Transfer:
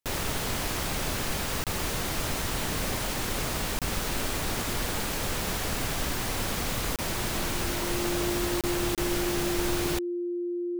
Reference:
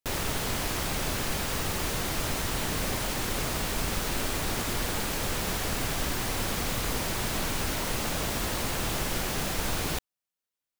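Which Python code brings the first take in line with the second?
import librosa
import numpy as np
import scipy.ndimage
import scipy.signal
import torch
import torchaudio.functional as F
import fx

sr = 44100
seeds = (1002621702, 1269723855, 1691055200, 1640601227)

y = fx.notch(x, sr, hz=350.0, q=30.0)
y = fx.fix_interpolate(y, sr, at_s=(1.64, 3.79, 6.96, 8.61, 8.95), length_ms=27.0)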